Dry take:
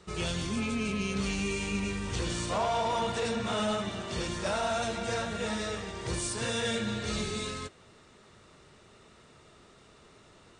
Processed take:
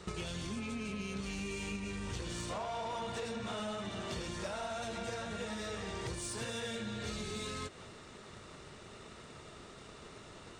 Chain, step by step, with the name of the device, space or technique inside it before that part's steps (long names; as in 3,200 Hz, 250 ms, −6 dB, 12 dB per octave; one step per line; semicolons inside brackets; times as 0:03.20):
drum-bus smash (transient designer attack +8 dB, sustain +2 dB; downward compressor 10 to 1, threshold −40 dBFS, peak gain reduction 16.5 dB; soft clipping −36 dBFS, distortion −20 dB)
level +4.5 dB